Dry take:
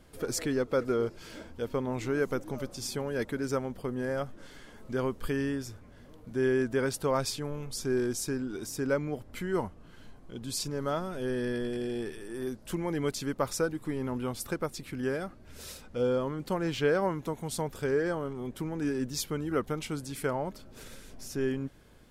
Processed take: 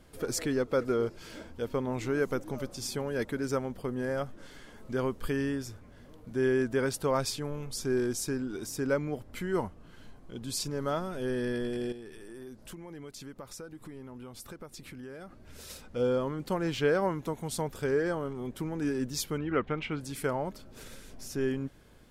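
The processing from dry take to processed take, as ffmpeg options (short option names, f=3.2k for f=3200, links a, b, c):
-filter_complex "[0:a]asettb=1/sr,asplit=3[a][b][c];[a]atrim=end=11.924[d];[b]atrim=start=11.92:end=15.7,asetpts=PTS-STARTPTS,afade=t=in:d=0.004:c=qsin,afade=t=out:st=3.776:d=0.004:c=qsin,acompressor=threshold=-43dB:ratio=4:attack=3.2:release=140:knee=1:detection=peak[e];[c]atrim=start=15.696[f];[d][e]acrossfade=d=0.004:c1=hsin:c2=qsin[g];[g][f]acrossfade=d=0.004:c1=qsin:c2=hsin,asettb=1/sr,asplit=3[h][i][j];[h]atrim=end=19.384[k];[i]atrim=start=19.38:end=20.01,asetpts=PTS-STARTPTS,afade=t=in:d=0.004:c=qsin,afade=t=out:st=0.626:d=0.004:c=qsin,lowpass=f=2.5k:t=q:w=2[l];[j]atrim=start=20.006[m];[k][l]acrossfade=d=0.004:c1=hsin:c2=qsin[n];[n][m]acrossfade=d=0.004:c1=qsin:c2=hsin"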